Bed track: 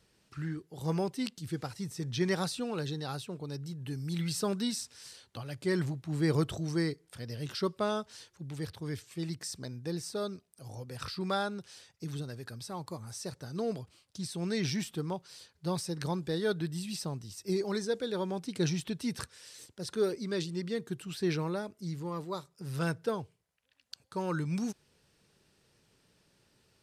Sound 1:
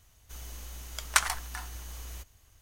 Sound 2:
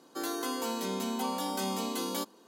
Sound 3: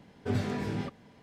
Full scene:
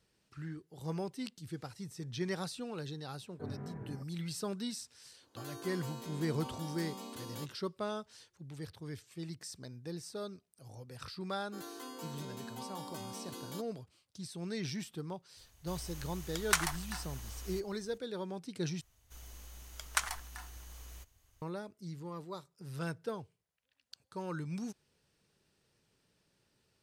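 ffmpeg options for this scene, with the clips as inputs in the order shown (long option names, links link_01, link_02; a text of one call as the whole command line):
ffmpeg -i bed.wav -i cue0.wav -i cue1.wav -i cue2.wav -filter_complex "[2:a]asplit=2[link_01][link_02];[1:a]asplit=2[link_03][link_04];[0:a]volume=-6.5dB[link_05];[3:a]lowpass=frequency=1600:width=0.5412,lowpass=frequency=1600:width=1.3066[link_06];[link_03]acontrast=67[link_07];[link_05]asplit=2[link_08][link_09];[link_08]atrim=end=18.814[link_10];[link_04]atrim=end=2.61,asetpts=PTS-STARTPTS,volume=-8dB[link_11];[link_09]atrim=start=21.416[link_12];[link_06]atrim=end=1.22,asetpts=PTS-STARTPTS,volume=-13.5dB,afade=type=in:duration=0.004:curve=hsin,afade=type=out:start_time=1.216:duration=0.004:curve=hsin,adelay=3140[link_13];[link_01]atrim=end=2.47,asetpts=PTS-STARTPTS,volume=-12.5dB,afade=type=in:duration=0.004:curve=hsin,afade=type=out:start_time=2.466:duration=0.004:curve=hsin,adelay=229761S[link_14];[link_02]atrim=end=2.47,asetpts=PTS-STARTPTS,volume=-12.5dB,afade=type=in:duration=0.004:curve=hsin,afade=type=out:start_time=2.466:duration=0.004:curve=hsin,adelay=11370[link_15];[link_07]atrim=end=2.61,asetpts=PTS-STARTPTS,volume=-10dB,afade=type=in:duration=0.004:curve=hsin,afade=type=out:start_time=2.606:duration=0.004:curve=hsin,adelay=15370[link_16];[link_10][link_11]acrossfade=duration=0.004:curve1=hsin:curve2=hsin[link_17];[link_17][link_12]acrossfade=duration=0.004:curve1=hsin:curve2=hsin[link_18];[link_18][link_13][link_14][link_15][link_16]amix=inputs=5:normalize=0" out.wav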